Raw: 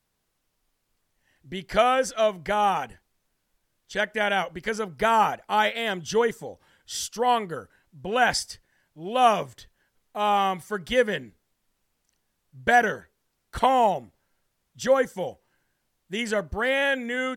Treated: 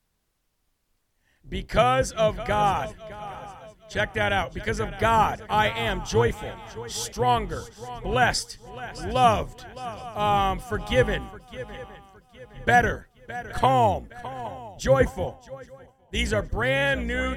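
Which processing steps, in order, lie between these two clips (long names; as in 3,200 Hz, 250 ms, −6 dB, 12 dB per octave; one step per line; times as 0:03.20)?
sub-octave generator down 2 octaves, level +3 dB
feedback echo with a long and a short gap by turns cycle 815 ms, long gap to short 3 to 1, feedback 35%, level −16 dB
0:15.00–0:16.27: multiband upward and downward expander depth 70%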